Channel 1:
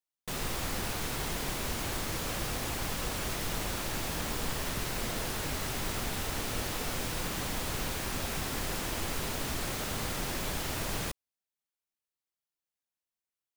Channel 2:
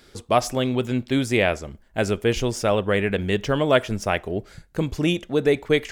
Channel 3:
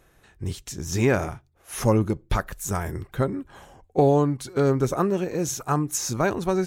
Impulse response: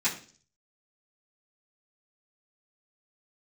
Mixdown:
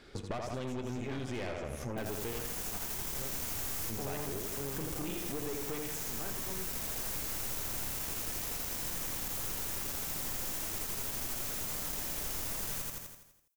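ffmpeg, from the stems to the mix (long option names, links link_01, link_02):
-filter_complex "[0:a]aexciter=amount=3.2:drive=3.1:freq=5600,adelay=1700,volume=3dB,asplit=2[link_01][link_02];[link_02]volume=-5.5dB[link_03];[1:a]aemphasis=mode=reproduction:type=50fm,acompressor=threshold=-25dB:ratio=4,volume=0.5dB,asplit=3[link_04][link_05][link_06];[link_04]atrim=end=2.39,asetpts=PTS-STARTPTS,afade=type=out:start_time=2.386:duration=0.004:curve=hsin[link_07];[link_05]atrim=start=2.39:end=3.87,asetpts=PTS-STARTPTS,volume=0[link_08];[link_06]atrim=start=3.87,asetpts=PTS-STARTPTS,afade=type=in:duration=0.004:curve=hsin[link_09];[link_07][link_08][link_09]concat=n=3:v=0:a=1,asplit=4[link_10][link_11][link_12][link_13];[link_11]volume=-18.5dB[link_14];[link_12]volume=-6dB[link_15];[2:a]volume=-14.5dB,asplit=2[link_16][link_17];[link_17]volume=-8.5dB[link_18];[link_13]apad=whole_len=673011[link_19];[link_01][link_19]sidechaincompress=threshold=-40dB:ratio=8:attack=16:release=934[link_20];[3:a]atrim=start_sample=2205[link_21];[link_14][link_18]amix=inputs=2:normalize=0[link_22];[link_22][link_21]afir=irnorm=-1:irlink=0[link_23];[link_03][link_15]amix=inputs=2:normalize=0,aecho=0:1:83|166|249|332|415|498|581|664:1|0.53|0.281|0.149|0.0789|0.0418|0.0222|0.0117[link_24];[link_20][link_10][link_16][link_23][link_24]amix=inputs=5:normalize=0,aeval=exprs='(tanh(25.1*val(0)+0.65)-tanh(0.65))/25.1':channel_layout=same,acompressor=threshold=-34dB:ratio=5"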